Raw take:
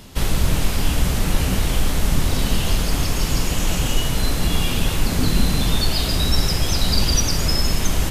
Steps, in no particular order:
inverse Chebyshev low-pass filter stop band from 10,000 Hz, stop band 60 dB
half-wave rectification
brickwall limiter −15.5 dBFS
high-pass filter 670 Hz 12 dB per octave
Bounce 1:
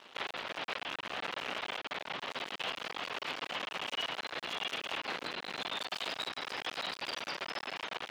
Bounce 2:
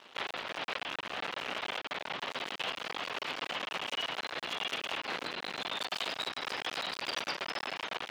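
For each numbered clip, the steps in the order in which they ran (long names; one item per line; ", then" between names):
brickwall limiter, then inverse Chebyshev low-pass filter, then half-wave rectification, then high-pass filter
inverse Chebyshev low-pass filter, then half-wave rectification, then brickwall limiter, then high-pass filter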